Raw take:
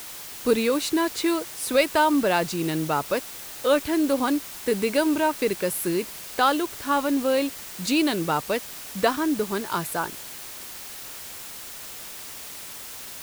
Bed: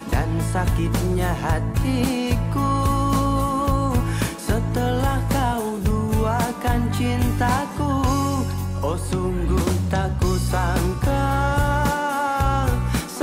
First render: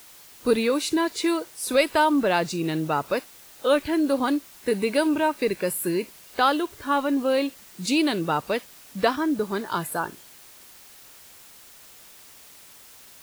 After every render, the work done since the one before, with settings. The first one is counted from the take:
noise reduction from a noise print 10 dB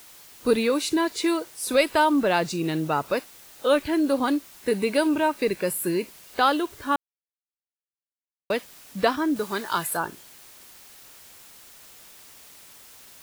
0:06.96–0:08.50: silence
0:09.36–0:09.97: tilt shelving filter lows −5 dB, about 720 Hz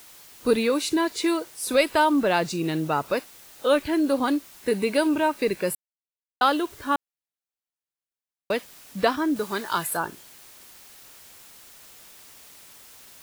0:05.75–0:06.41: silence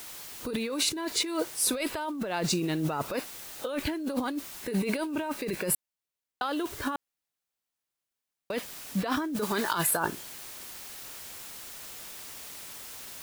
brickwall limiter −14.5 dBFS, peak gain reduction 8 dB
compressor whose output falls as the input rises −30 dBFS, ratio −1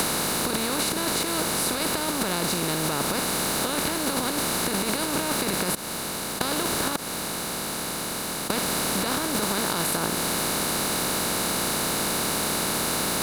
compressor on every frequency bin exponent 0.2
downward compressor 4 to 1, threshold −23 dBFS, peak gain reduction 7.5 dB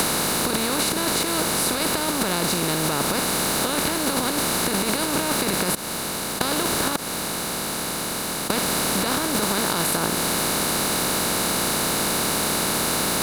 level +3 dB

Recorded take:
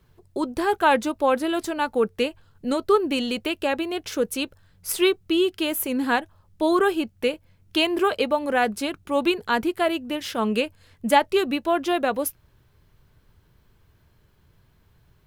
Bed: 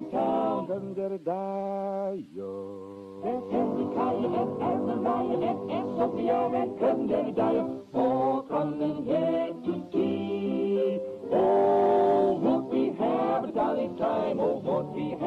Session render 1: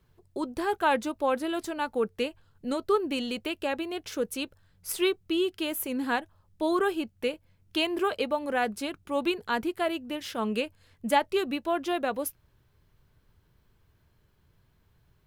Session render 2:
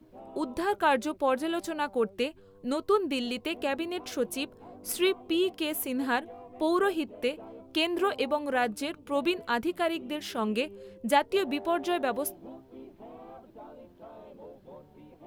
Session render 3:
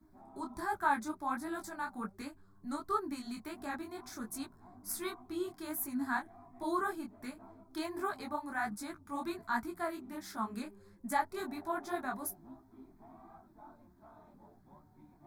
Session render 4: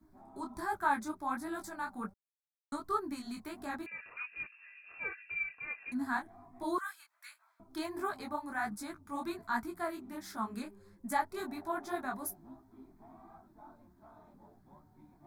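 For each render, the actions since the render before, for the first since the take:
level −6 dB
mix in bed −21 dB
phaser with its sweep stopped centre 1,200 Hz, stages 4; micro pitch shift up and down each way 47 cents
0:02.14–0:02.72: silence; 0:03.86–0:05.92: voice inversion scrambler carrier 2,700 Hz; 0:06.78–0:07.60: high-pass filter 1,400 Hz 24 dB per octave

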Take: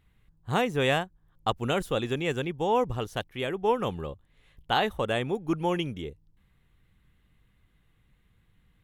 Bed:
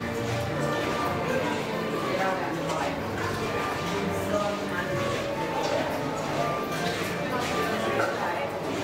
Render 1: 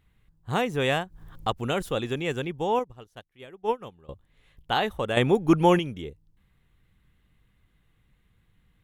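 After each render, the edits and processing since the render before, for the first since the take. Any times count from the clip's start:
0:00.62–0:01.89: upward compression, threshold −28 dBFS
0:02.79–0:04.09: expander for the loud parts 2.5 to 1, over −34 dBFS
0:05.17–0:05.79: clip gain +8.5 dB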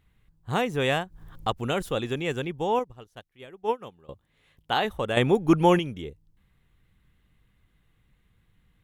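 0:03.64–0:04.85: high-pass filter 120 Hz 6 dB per octave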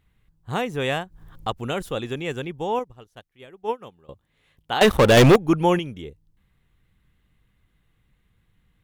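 0:04.81–0:05.36: leveller curve on the samples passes 5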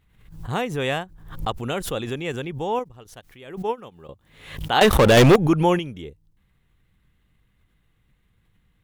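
background raised ahead of every attack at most 84 dB per second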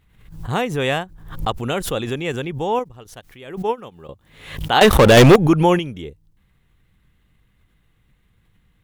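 level +4 dB
brickwall limiter −3 dBFS, peak gain reduction 1.5 dB

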